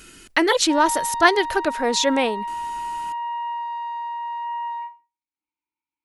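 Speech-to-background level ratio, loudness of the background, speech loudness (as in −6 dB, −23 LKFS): 9.0 dB, −29.0 LKFS, −20.0 LKFS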